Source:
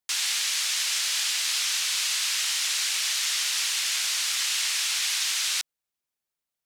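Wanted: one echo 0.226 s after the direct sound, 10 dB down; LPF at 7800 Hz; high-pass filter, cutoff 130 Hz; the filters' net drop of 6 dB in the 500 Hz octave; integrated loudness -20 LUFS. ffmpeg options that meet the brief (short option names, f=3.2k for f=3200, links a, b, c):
-af "highpass=130,lowpass=7.8k,equalizer=f=500:t=o:g=-8.5,aecho=1:1:226:0.316,volume=4.5dB"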